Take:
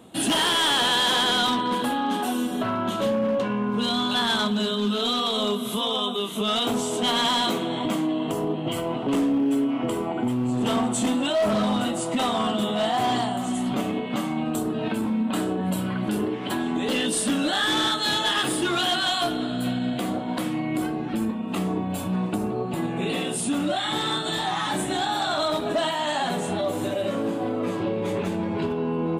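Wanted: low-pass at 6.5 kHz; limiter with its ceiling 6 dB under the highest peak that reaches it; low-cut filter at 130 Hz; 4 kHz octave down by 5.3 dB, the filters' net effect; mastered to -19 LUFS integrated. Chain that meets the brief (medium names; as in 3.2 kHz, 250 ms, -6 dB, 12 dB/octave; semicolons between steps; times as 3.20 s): high-pass 130 Hz; low-pass 6.5 kHz; peaking EQ 4 kHz -6.5 dB; trim +8.5 dB; peak limiter -11 dBFS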